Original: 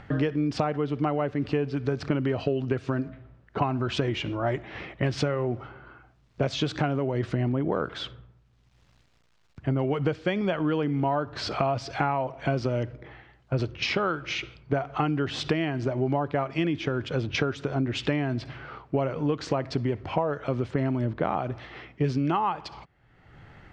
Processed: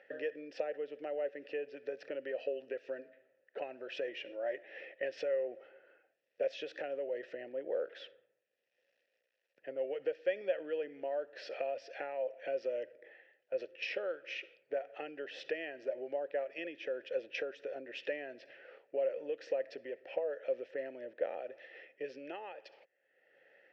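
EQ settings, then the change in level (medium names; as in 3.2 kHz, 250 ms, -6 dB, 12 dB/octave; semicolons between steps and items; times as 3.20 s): vowel filter e; high-pass 380 Hz 12 dB/octave; peaking EQ 5.5 kHz +9 dB 0.25 oct; +1.0 dB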